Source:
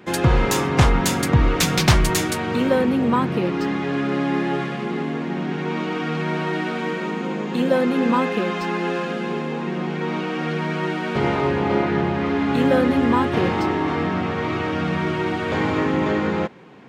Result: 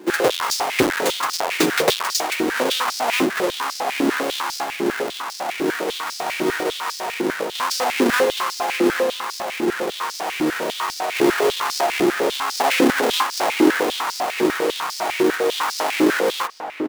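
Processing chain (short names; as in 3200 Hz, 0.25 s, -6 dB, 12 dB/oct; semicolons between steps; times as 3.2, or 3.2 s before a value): half-waves squared off; outdoor echo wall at 170 m, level -7 dB; stepped high-pass 10 Hz 330–5000 Hz; gain -5 dB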